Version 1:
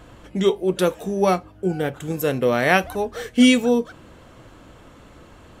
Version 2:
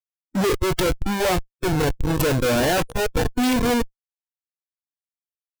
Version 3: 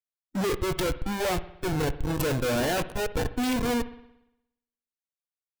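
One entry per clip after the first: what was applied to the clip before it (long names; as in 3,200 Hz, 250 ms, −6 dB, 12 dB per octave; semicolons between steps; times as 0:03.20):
comparator with hysteresis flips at −26 dBFS; noise reduction from a noise print of the clip's start 12 dB; level +3.5 dB
convolution reverb, pre-delay 58 ms, DRR 14 dB; level −6.5 dB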